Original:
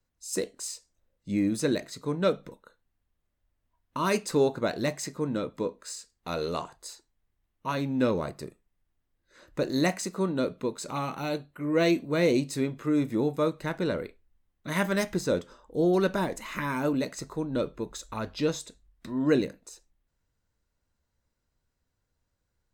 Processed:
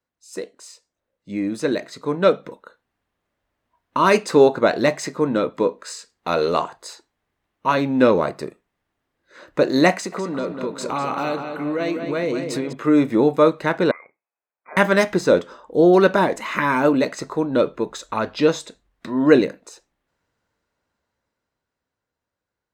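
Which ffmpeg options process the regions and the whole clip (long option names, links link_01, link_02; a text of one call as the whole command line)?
ffmpeg -i in.wav -filter_complex "[0:a]asettb=1/sr,asplit=3[link_01][link_02][link_03];[link_01]atrim=end=9.924[link_04];[link_02]atrim=start=9.92:end=12.73,asetpts=PTS-STARTPTS,afade=type=in:duration=0.004:curve=qsin,afade=type=out:start_time=2.806:duration=0.004:curve=qsin,acompressor=threshold=-31dB:ratio=10:attack=3.2:release=140:knee=1:detection=peak,asplit=2[link_05][link_06];[link_06]adelay=200,lowpass=frequency=3900:poles=1,volume=-6.5dB,asplit=2[link_07][link_08];[link_08]adelay=200,lowpass=frequency=3900:poles=1,volume=0.5,asplit=2[link_09][link_10];[link_10]adelay=200,lowpass=frequency=3900:poles=1,volume=0.5,asplit=2[link_11][link_12];[link_12]adelay=200,lowpass=frequency=3900:poles=1,volume=0.5,asplit=2[link_13][link_14];[link_14]adelay=200,lowpass=frequency=3900:poles=1,volume=0.5,asplit=2[link_15][link_16];[link_16]adelay=200,lowpass=frequency=3900:poles=1,volume=0.5[link_17];[link_05][link_07][link_09][link_11][link_13][link_15][link_17]amix=inputs=7:normalize=0,atrim=end_sample=123921[link_18];[link_03]atrim=start=12.726[link_19];[link_04][link_18]acrossfade=duration=0.004:curve1=hsin:curve2=qsin[link_20];[link_20][link_19]acrossfade=duration=0.004:curve1=qsin:curve2=hsin,asettb=1/sr,asplit=3[link_21][link_22][link_23];[link_21]atrim=end=13.914[link_24];[link_22]atrim=start=13.91:end=14.77,asetpts=PTS-STARTPTS,afade=type=in:duration=0.004:curve=qsin,afade=type=out:start_time=0.856:duration=0.004:curve=qsin,aderivative,lowpass=frequency=2200:width_type=q:width=0.5098,lowpass=frequency=2200:width_type=q:width=0.6013,lowpass=frequency=2200:width_type=q:width=0.9,lowpass=frequency=2200:width_type=q:width=2.563,afreqshift=-2600[link_25];[link_23]atrim=start=14.766[link_26];[link_24][link_25]acrossfade=duration=0.004:curve1=hsin:curve2=qsin[link_27];[link_27][link_26]acrossfade=duration=0.004:curve1=qsin:curve2=hsin,highpass=frequency=430:poles=1,dynaudnorm=framelen=120:gausssize=31:maxgain=11.5dB,lowpass=frequency=2100:poles=1,volume=3.5dB" out.wav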